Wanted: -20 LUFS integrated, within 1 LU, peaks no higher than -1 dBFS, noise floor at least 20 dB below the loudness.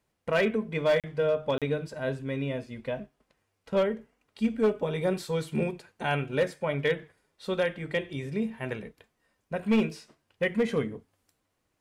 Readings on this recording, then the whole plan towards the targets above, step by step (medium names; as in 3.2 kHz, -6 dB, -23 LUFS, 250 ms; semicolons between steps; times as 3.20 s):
clipped samples 0.5%; clipping level -18.0 dBFS; dropouts 2; longest dropout 37 ms; loudness -30.0 LUFS; peak level -18.0 dBFS; loudness target -20.0 LUFS
-> clip repair -18 dBFS; interpolate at 1.00/1.58 s, 37 ms; trim +10 dB